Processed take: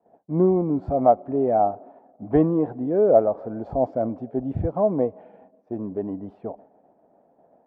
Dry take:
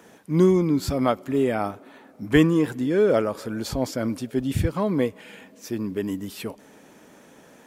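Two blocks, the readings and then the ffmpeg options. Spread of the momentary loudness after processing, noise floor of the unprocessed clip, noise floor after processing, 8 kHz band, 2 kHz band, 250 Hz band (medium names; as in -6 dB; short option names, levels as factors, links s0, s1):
15 LU, -52 dBFS, -62 dBFS, under -40 dB, under -15 dB, -2.0 dB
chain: -af "lowpass=f=710:t=q:w=5.9,agate=range=0.0224:threshold=0.0141:ratio=3:detection=peak,volume=0.668"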